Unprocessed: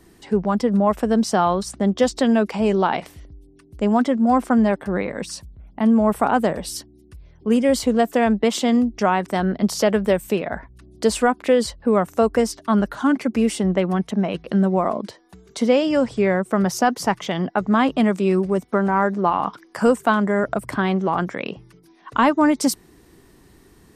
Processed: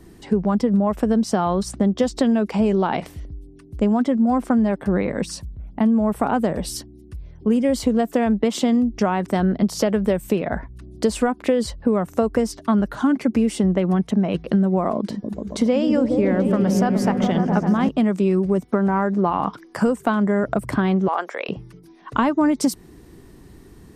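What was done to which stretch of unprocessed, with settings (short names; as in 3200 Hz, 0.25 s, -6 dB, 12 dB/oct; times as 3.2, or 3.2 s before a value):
14.96–17.89 repeats that get brighter 0.139 s, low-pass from 200 Hz, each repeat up 1 oct, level 0 dB
21.08–21.49 HPF 480 Hz 24 dB/oct
whole clip: low shelf 440 Hz +8 dB; compressor, threshold -15 dBFS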